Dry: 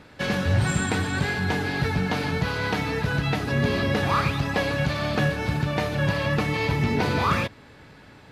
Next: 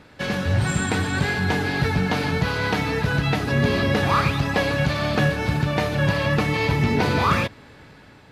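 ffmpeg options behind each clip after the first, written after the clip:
ffmpeg -i in.wav -af "dynaudnorm=framelen=340:gausssize=5:maxgain=3dB" out.wav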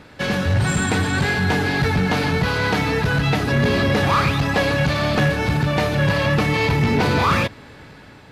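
ffmpeg -i in.wav -af "asoftclip=type=tanh:threshold=-15.5dB,volume=4.5dB" out.wav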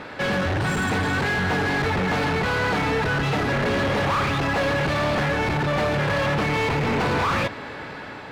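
ffmpeg -i in.wav -filter_complex "[0:a]aeval=exprs='0.282*sin(PI/2*1.78*val(0)/0.282)':channel_layout=same,asplit=2[link_01][link_02];[link_02]highpass=frequency=720:poles=1,volume=17dB,asoftclip=type=tanh:threshold=-10.5dB[link_03];[link_01][link_03]amix=inputs=2:normalize=0,lowpass=frequency=1500:poles=1,volume=-6dB,volume=-6.5dB" out.wav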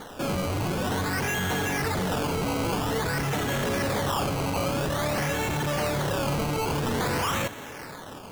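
ffmpeg -i in.wav -af "acrusher=samples=17:mix=1:aa=0.000001:lfo=1:lforange=17:lforate=0.5,volume=-4.5dB" out.wav

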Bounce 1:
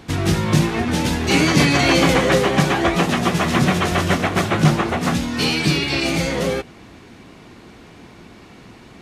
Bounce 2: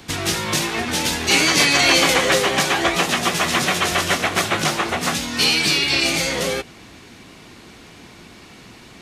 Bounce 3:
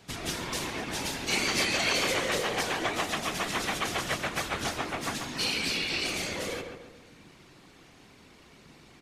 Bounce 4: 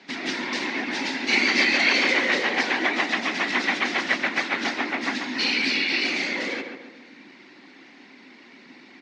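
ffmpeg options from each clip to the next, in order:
ffmpeg -i in.wav -filter_complex "[0:a]acrossover=split=340|470|4000[link_01][link_02][link_03][link_04];[link_01]acompressor=threshold=-27dB:ratio=6[link_05];[link_05][link_02][link_03][link_04]amix=inputs=4:normalize=0,highshelf=frequency=2100:gain=9.5,volume=-2dB" out.wav
ffmpeg -i in.wav -filter_complex "[0:a]afftfilt=real='hypot(re,im)*cos(2*PI*random(0))':imag='hypot(re,im)*sin(2*PI*random(1))':win_size=512:overlap=0.75,asplit=2[link_01][link_02];[link_02]adelay=138,lowpass=frequency=1900:poles=1,volume=-5dB,asplit=2[link_03][link_04];[link_04]adelay=138,lowpass=frequency=1900:poles=1,volume=0.48,asplit=2[link_05][link_06];[link_06]adelay=138,lowpass=frequency=1900:poles=1,volume=0.48,asplit=2[link_07][link_08];[link_08]adelay=138,lowpass=frequency=1900:poles=1,volume=0.48,asplit=2[link_09][link_10];[link_10]adelay=138,lowpass=frequency=1900:poles=1,volume=0.48,asplit=2[link_11][link_12];[link_12]adelay=138,lowpass=frequency=1900:poles=1,volume=0.48[link_13];[link_01][link_03][link_05][link_07][link_09][link_11][link_13]amix=inputs=7:normalize=0,volume=-6.5dB" out.wav
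ffmpeg -i in.wav -af "highpass=frequency=240:width=0.5412,highpass=frequency=240:width=1.3066,equalizer=frequency=250:width_type=q:width=4:gain=7,equalizer=frequency=460:width_type=q:width=4:gain=-7,equalizer=frequency=650:width_type=q:width=4:gain=-5,equalizer=frequency=1200:width_type=q:width=4:gain=-6,equalizer=frequency=2000:width_type=q:width=4:gain=7,equalizer=frequency=3200:width_type=q:width=4:gain=-4,lowpass=frequency=4900:width=0.5412,lowpass=frequency=4900:width=1.3066,volume=7dB" out.wav

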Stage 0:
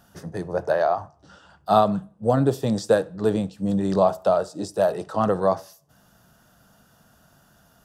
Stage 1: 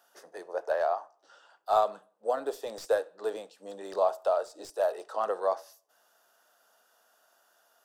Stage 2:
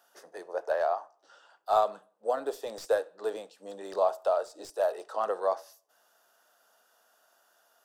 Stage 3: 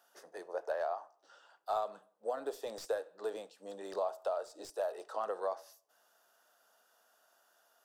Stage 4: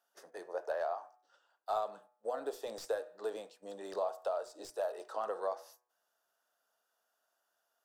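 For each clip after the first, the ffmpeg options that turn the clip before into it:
ffmpeg -i in.wav -filter_complex "[0:a]highpass=frequency=440:width=0.5412,highpass=frequency=440:width=1.3066,acrossover=split=2000[link_01][link_02];[link_02]aeval=exprs='clip(val(0),-1,0.00841)':channel_layout=same[link_03];[link_01][link_03]amix=inputs=2:normalize=0,volume=-6.5dB" out.wav
ffmpeg -i in.wav -af anull out.wav
ffmpeg -i in.wav -af "acompressor=threshold=-30dB:ratio=2.5,volume=-3.5dB" out.wav
ffmpeg -i in.wav -af "agate=range=-11dB:threshold=-58dB:ratio=16:detection=peak,bandreject=frequency=122.6:width_type=h:width=4,bandreject=frequency=245.2:width_type=h:width=4,bandreject=frequency=367.8:width_type=h:width=4,bandreject=frequency=490.4:width_type=h:width=4,bandreject=frequency=613:width_type=h:width=4,bandreject=frequency=735.6:width_type=h:width=4,bandreject=frequency=858.2:width_type=h:width=4,bandreject=frequency=980.8:width_type=h:width=4,bandreject=frequency=1103.4:width_type=h:width=4,bandreject=frequency=1226:width_type=h:width=4,bandreject=frequency=1348.6:width_type=h:width=4,bandreject=frequency=1471.2:width_type=h:width=4,bandreject=frequency=1593.8:width_type=h:width=4,bandreject=frequency=1716.4:width_type=h:width=4,bandreject=frequency=1839:width_type=h:width=4,bandreject=frequency=1961.6:width_type=h:width=4,bandreject=frequency=2084.2:width_type=h:width=4,bandreject=frequency=2206.8:width_type=h:width=4,bandreject=frequency=2329.4:width_type=h:width=4,bandreject=frequency=2452:width_type=h:width=4" out.wav

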